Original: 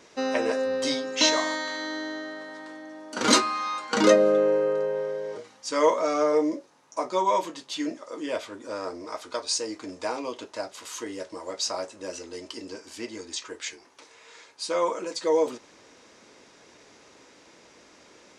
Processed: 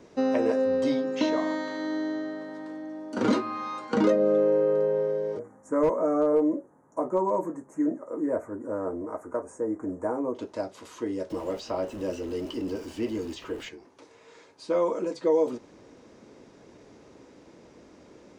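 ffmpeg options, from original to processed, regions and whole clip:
ffmpeg -i in.wav -filter_complex "[0:a]asettb=1/sr,asplit=3[link_01][link_02][link_03];[link_01]atrim=end=5.394[link_04];[link_02]atrim=start=5.39:end=10.35,asetpts=PTS-STARTPTS,afade=type=in:duration=0.004:curve=qsin,afade=type=out:start_time=4.956:duration=0.004:curve=qsin,asuperstop=centerf=3700:order=8:qfactor=0.68,asoftclip=type=hard:threshold=-15dB[link_05];[link_03]atrim=start=10.346[link_06];[link_04][link_05]acrossfade=duration=0.004:curve1=hsin:curve2=qsin[link_07];[link_07][link_06]acrossfade=duration=0.004:curve1=qsin:curve2=hsin,asettb=1/sr,asplit=3[link_08][link_09][link_10];[link_08]atrim=end=11.304[link_11];[link_09]atrim=start=11.3:end=13.69,asetpts=PTS-STARTPTS,afade=type=in:duration=0.004:curve=qsin,afade=type=out:start_time=2.386:duration=0.004:curve=qsin,aeval=exprs='val(0)+0.5*0.0106*sgn(val(0))':channel_layout=same,equalizer=frequency=2900:width=7.2:gain=9.5[link_12];[link_10]atrim=start=13.686[link_13];[link_11][link_12]acrossfade=duration=0.004:curve1=hsin:curve2=qsin[link_14];[link_14][link_13]acrossfade=duration=0.004:curve1=qsin:curve2=hsin,acrossover=split=510|3800[link_15][link_16][link_17];[link_15]acompressor=threshold=-29dB:ratio=4[link_18];[link_16]acompressor=threshold=-26dB:ratio=4[link_19];[link_17]acompressor=threshold=-44dB:ratio=4[link_20];[link_18][link_19][link_20]amix=inputs=3:normalize=0,tiltshelf=frequency=740:gain=9" out.wav

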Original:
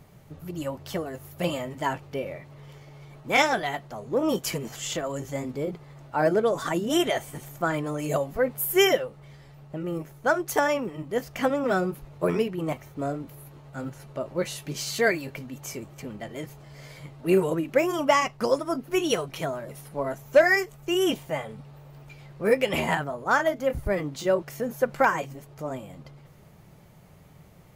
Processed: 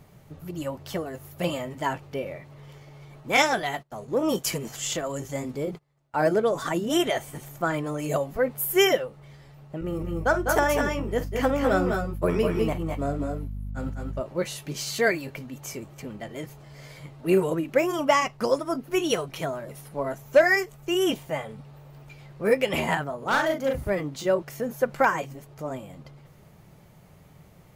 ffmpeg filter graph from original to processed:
ffmpeg -i in.wav -filter_complex "[0:a]asettb=1/sr,asplit=3[link_01][link_02][link_03];[link_01]atrim=end=3.334[link_04];[link_02]atrim=start=3.33:end=6.38,asetpts=PTS-STARTPTS,afade=type=in:duration=0.004:curve=qsin,afade=type=out:start_time=3.046:duration=0.004:curve=qsin,agate=range=-25dB:threshold=-43dB:ratio=16:release=100:detection=peak,equalizer=frequency=9100:width_type=o:width=1.8:gain=4[link_05];[link_03]atrim=start=6.376[link_06];[link_04][link_05]acrossfade=duration=0.004:curve1=hsin:curve2=qsin[link_07];[link_07][link_06]acrossfade=duration=0.004:curve1=qsin:curve2=hsin,asettb=1/sr,asplit=3[link_08][link_09][link_10];[link_08]atrim=end=9.814[link_11];[link_09]atrim=start=9.81:end=14.21,asetpts=PTS-STARTPTS,afade=type=in:duration=0.004:curve=qsin,afade=type=out:start_time=4.396:duration=0.004:curve=qsin,agate=range=-33dB:threshold=-35dB:ratio=3:release=100:detection=peak,aeval=exprs='val(0)+0.0141*(sin(2*PI*50*n/s)+sin(2*PI*2*50*n/s)/2+sin(2*PI*3*50*n/s)/3+sin(2*PI*4*50*n/s)/4+sin(2*PI*5*50*n/s)/5)':channel_layout=same,aecho=1:1:50|201|219:0.188|0.531|0.501,atrim=end_sample=194040[link_12];[link_10]atrim=start=14.206[link_13];[link_11][link_12]acrossfade=duration=0.004:curve1=hsin:curve2=qsin[link_14];[link_14][link_13]acrossfade=duration=0.004:curve1=qsin:curve2=hsin,asettb=1/sr,asplit=3[link_15][link_16][link_17];[link_15]atrim=end=23.184[link_18];[link_16]atrim=start=23.18:end=23.9,asetpts=PTS-STARTPTS,afade=type=in:duration=0.004:curve=qsin,afade=type=out:start_time=0.716:duration=0.004:curve=qsin,highpass=62,asoftclip=type=hard:threshold=-20dB,asplit=2[link_19][link_20];[link_20]adelay=41,volume=-3dB[link_21];[link_19][link_21]amix=inputs=2:normalize=0,atrim=end_sample=31752[link_22];[link_17]atrim=start=23.896[link_23];[link_18][link_22]acrossfade=duration=0.004:curve1=hsin:curve2=qsin[link_24];[link_24][link_23]acrossfade=duration=0.004:curve1=qsin:curve2=hsin" out.wav

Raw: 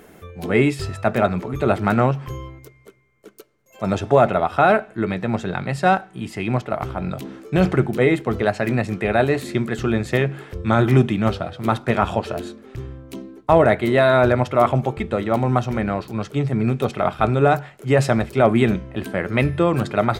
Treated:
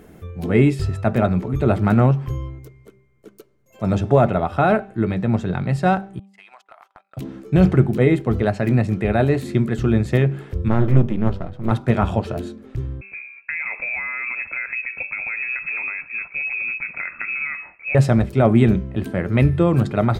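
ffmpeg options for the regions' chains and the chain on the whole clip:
ffmpeg -i in.wav -filter_complex "[0:a]asettb=1/sr,asplit=3[link_01][link_02][link_03];[link_01]atrim=end=6.194[link_04];[link_02]atrim=start=6.19:end=7.17,asetpts=PTS-STARTPTS,afade=type=in:duration=0.004:curve=qsin,afade=type=out:start_time=0.976:duration=0.004:curve=qsin,highpass=frequency=850:width=0.5412,highpass=frequency=850:width=1.3066,agate=range=-32dB:threshold=-37dB:ratio=16:release=100:detection=peak,acompressor=threshold=-38dB:ratio=8:attack=3.2:release=140:knee=1:detection=peak[link_05];[link_03]atrim=start=7.166[link_06];[link_04][link_05]acrossfade=duration=0.004:curve1=hsin:curve2=qsin[link_07];[link_07][link_06]acrossfade=duration=0.004:curve1=qsin:curve2=hsin,asettb=1/sr,asplit=3[link_08][link_09][link_10];[link_08]atrim=end=10.684[link_11];[link_09]atrim=start=10.68:end=11.71,asetpts=PTS-STARTPTS,afade=type=in:duration=0.004:curve=qsin,afade=type=out:start_time=1.026:duration=0.004:curve=qsin,aeval=exprs='if(lt(val(0),0),0.251*val(0),val(0))':channel_layout=same,highshelf=frequency=2300:gain=-10[link_12];[link_10]atrim=start=11.706[link_13];[link_11][link_12]acrossfade=duration=0.004:curve1=hsin:curve2=qsin[link_14];[link_14][link_13]acrossfade=duration=0.004:curve1=qsin:curve2=hsin,asettb=1/sr,asplit=3[link_15][link_16][link_17];[link_15]atrim=end=13.014[link_18];[link_16]atrim=start=13.01:end=17.95,asetpts=PTS-STARTPTS,afade=type=in:duration=0.004:curve=qsin,afade=type=out:start_time=4.936:duration=0.004:curve=qsin,acompressor=threshold=-20dB:ratio=10:attack=3.2:release=140:knee=1:detection=peak,tiltshelf=frequency=1200:gain=3.5,lowpass=frequency=2300:width_type=q:width=0.5098,lowpass=frequency=2300:width_type=q:width=0.6013,lowpass=frequency=2300:width_type=q:width=0.9,lowpass=frequency=2300:width_type=q:width=2.563,afreqshift=-2700[link_19];[link_17]atrim=start=17.946[link_20];[link_18][link_19]acrossfade=duration=0.004:curve1=hsin:curve2=qsin[link_21];[link_21][link_20]acrossfade=duration=0.004:curve1=qsin:curve2=hsin,lowshelf=frequency=320:gain=12,bandreject=frequency=196:width_type=h:width=4,bandreject=frequency=392:width_type=h:width=4,bandreject=frequency=588:width_type=h:width=4,bandreject=frequency=784:width_type=h:width=4,bandreject=frequency=980:width_type=h:width=4,bandreject=frequency=1176:width_type=h:width=4,volume=-4.5dB" out.wav

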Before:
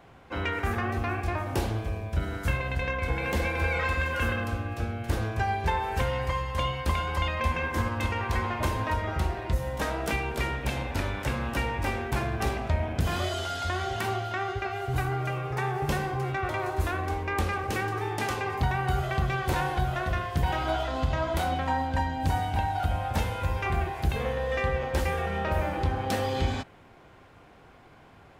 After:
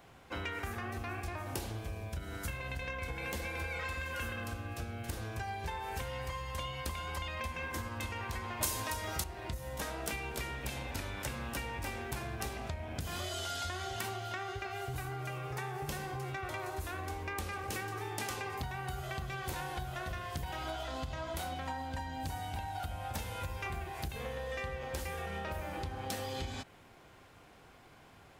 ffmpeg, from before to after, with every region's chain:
ffmpeg -i in.wav -filter_complex "[0:a]asettb=1/sr,asplit=3[link_01][link_02][link_03];[link_01]atrim=end=8.614[link_04];[link_02]atrim=start=8.61:end=9.24,asetpts=PTS-STARTPTS,afade=type=in:duration=0.004:curve=qsin,afade=type=out:start_time=0.626:duration=0.004:curve=qsin,bass=frequency=250:gain=-3,treble=frequency=4000:gain=13,acontrast=72[link_05];[link_03]atrim=start=9.236[link_06];[link_04][link_05]acrossfade=duration=0.004:curve1=hsin:curve2=qsin[link_07];[link_07][link_06]acrossfade=duration=0.004:curve1=qsin:curve2=hsin,acompressor=threshold=-31dB:ratio=6,highshelf=frequency=3800:gain=11.5,volume=-5.5dB" out.wav

